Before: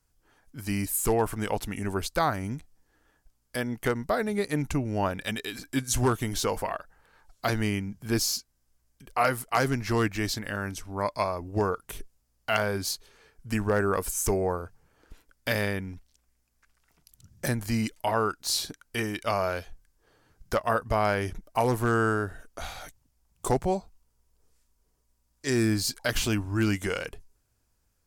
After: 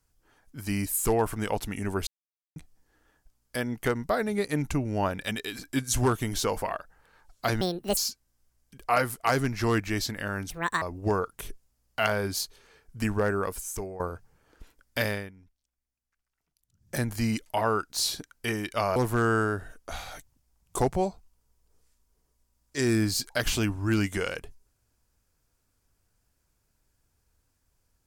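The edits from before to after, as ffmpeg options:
-filter_complex "[0:a]asplit=11[a][b][c][d][e][f][g][h][i][j][k];[a]atrim=end=2.07,asetpts=PTS-STARTPTS,afade=t=out:st=2.066:d=0.004:c=hsin[l];[b]atrim=start=2.07:end=2.56,asetpts=PTS-STARTPTS,volume=0[m];[c]atrim=start=2.56:end=7.614,asetpts=PTS-STARTPTS,afade=t=in:d=0.004:c=hsin[n];[d]atrim=start=7.61:end=8.25,asetpts=PTS-STARTPTS,asetrate=78057,aresample=44100[o];[e]atrim=start=8.246:end=10.784[p];[f]atrim=start=10.78:end=11.32,asetpts=PTS-STARTPTS,asetrate=75411,aresample=44100,atrim=end_sample=13926,asetpts=PTS-STARTPTS[q];[g]atrim=start=11.316:end=14.5,asetpts=PTS-STARTPTS,afade=t=out:st=2.294:d=0.89:silence=0.16788[r];[h]atrim=start=14.5:end=15.82,asetpts=PTS-STARTPTS,afade=t=in:d=0.004:c=hsin:silence=0.16788,afade=t=out:st=1.03:d=0.29:silence=0.149624[s];[i]atrim=start=15.82:end=17.25,asetpts=PTS-STARTPTS,volume=-16.5dB[t];[j]atrim=start=17.25:end=19.462,asetpts=PTS-STARTPTS,afade=t=in:d=0.29:silence=0.149624[u];[k]atrim=start=21.648[v];[l][m][n]concat=n=3:v=0:a=1[w];[w][o]acrossfade=d=0.004:c1=hsin:c2=hsin[x];[x][p]acrossfade=d=0.004:c1=hsin:c2=hsin[y];[y][q]acrossfade=d=0.004:c1=hsin:c2=hsin[z];[r][s][t][u]concat=n=4:v=0:a=1[aa];[z][aa]acrossfade=d=0.004:c1=hsin:c2=hsin[ab];[ab][v]acrossfade=d=0.004:c1=hsin:c2=hsin"

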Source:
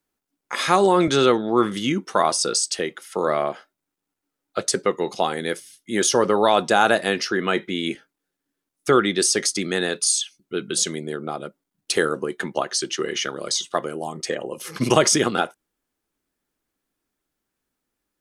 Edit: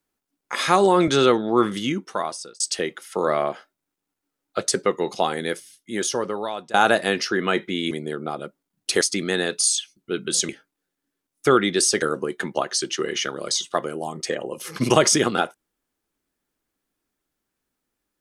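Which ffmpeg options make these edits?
-filter_complex "[0:a]asplit=7[a][b][c][d][e][f][g];[a]atrim=end=2.6,asetpts=PTS-STARTPTS,afade=t=out:st=1.71:d=0.89[h];[b]atrim=start=2.6:end=6.74,asetpts=PTS-STARTPTS,afade=t=in:d=0.004:c=hsin,afade=t=out:st=2.8:d=1.34:silence=0.0891251[i];[c]atrim=start=6.74:end=7.912,asetpts=PTS-STARTPTS,afade=t=in:d=0.004:c=hsin:silence=0.0891251[j];[d]atrim=start=10.918:end=12.022[k];[e]atrim=start=9.438:end=10.922[l];[f]atrim=start=7.908:end=9.442[m];[g]atrim=start=12.018[n];[h][i][j]concat=n=3:v=0:a=1[o];[o][k]acrossfade=d=0.004:c1=hsin:c2=hsin[p];[p][l]acrossfade=d=0.004:c1=hsin:c2=hsin[q];[q][m]acrossfade=d=0.004:c1=hsin:c2=hsin[r];[r][n]acrossfade=d=0.004:c1=hsin:c2=hsin"

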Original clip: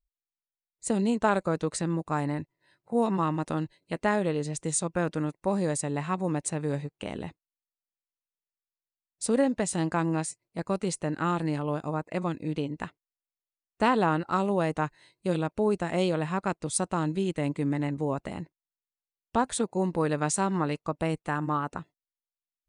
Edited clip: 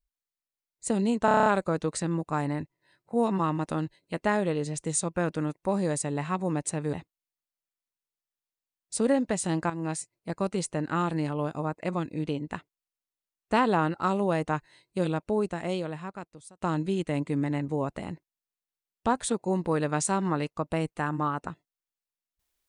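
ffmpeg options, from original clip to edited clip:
-filter_complex "[0:a]asplit=11[a][b][c][d][e][f][g][h][i][j][k];[a]atrim=end=1.282[l];[b]atrim=start=1.248:end=1.282[m];[c]atrim=start=1.248:end=1.282[n];[d]atrim=start=1.248:end=1.282[o];[e]atrim=start=1.248:end=1.282[p];[f]atrim=start=1.248:end=1.282[q];[g]atrim=start=1.248:end=1.282[r];[h]atrim=start=1.248:end=6.722[s];[i]atrim=start=7.218:end=9.99,asetpts=PTS-STARTPTS,afade=t=out:st=2.768:d=0.004:c=hsin:silence=0.251189[t];[j]atrim=start=9.99:end=16.9,asetpts=PTS-STARTPTS,afade=t=in:d=0.28:silence=0.251189,afade=t=out:st=5.45:d=1.46[u];[k]atrim=start=16.9,asetpts=PTS-STARTPTS,afade=t=in:d=0.004:c=hsin[v];[l][m]acrossfade=d=0.004:c1=hsin:c2=hsin[w];[w][n]acrossfade=d=0.004:c1=hsin:c2=hsin[x];[x][o]acrossfade=d=0.004:c1=hsin:c2=hsin[y];[y][p]acrossfade=d=0.004:c1=hsin:c2=hsin[z];[z][q]acrossfade=d=0.004:c1=hsin:c2=hsin[aa];[aa][r]acrossfade=d=0.004:c1=hsin:c2=hsin[ab];[ab][s]acrossfade=d=0.004:c1=hsin:c2=hsin[ac];[t][u][v]concat=n=3:v=0:a=1[ad];[ac][ad]acrossfade=d=0.004:c1=hsin:c2=hsin"

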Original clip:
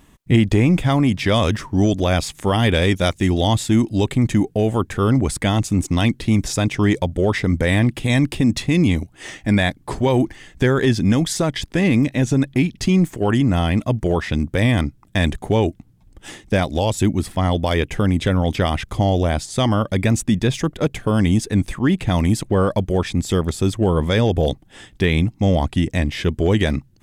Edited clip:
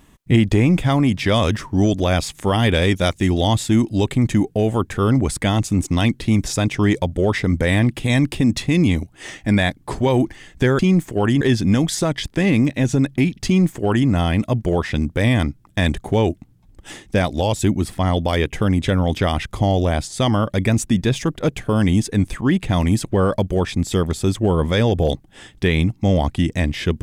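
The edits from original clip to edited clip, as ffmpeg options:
-filter_complex "[0:a]asplit=3[a][b][c];[a]atrim=end=10.792[d];[b]atrim=start=12.838:end=13.462[e];[c]atrim=start=10.788[f];[d][e]acrossfade=d=0.004:c1=hsin:c2=hsin[g];[g][f]acrossfade=d=0.004:c1=hsin:c2=hsin"

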